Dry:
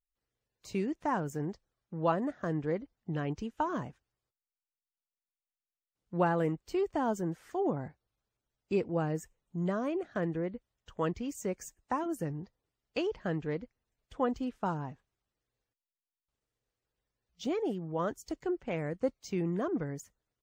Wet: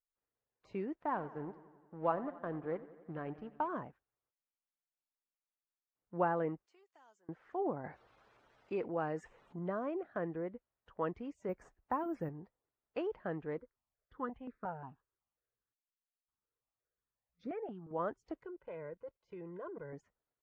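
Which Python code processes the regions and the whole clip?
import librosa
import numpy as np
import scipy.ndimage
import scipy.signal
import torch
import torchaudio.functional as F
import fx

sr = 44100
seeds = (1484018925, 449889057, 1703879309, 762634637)

y = fx.chain(x, sr, fx.law_mismatch(coded='A'),
    fx.savgol(points=15),
    fx.echo_warbled(ms=89, feedback_pct=68, rate_hz=2.8, cents=66, wet_db=-17), at=(1.03, 3.68))
y = fx.chain(y, sr, fx.bandpass_q(hz=7100.0, q=2.8),
    fx.band_squash(depth_pct=70), at=(6.66, 7.29))
y = fx.chain(y, sr, fx.tilt_eq(slope=2.0),
    fx.env_flatten(amount_pct=50), at=(7.84, 9.59))
y = fx.chain(y, sr, fx.low_shelf(hz=140.0, db=11.0),
    fx.resample_bad(factor=3, down='none', up='zero_stuff'), at=(11.49, 12.29))
y = fx.chain(y, sr, fx.lowpass(hz=4600.0, slope=12),
    fx.phaser_held(hz=5.6, low_hz=740.0, high_hz=3000.0), at=(13.58, 17.91))
y = fx.chain(y, sr, fx.comb(ms=2.0, depth=0.89),
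    fx.level_steps(step_db=20), at=(18.43, 19.93))
y = scipy.signal.sosfilt(scipy.signal.butter(2, 1500.0, 'lowpass', fs=sr, output='sos'), y)
y = fx.low_shelf(y, sr, hz=270.0, db=-12.0)
y = y * 10.0 ** (-1.0 / 20.0)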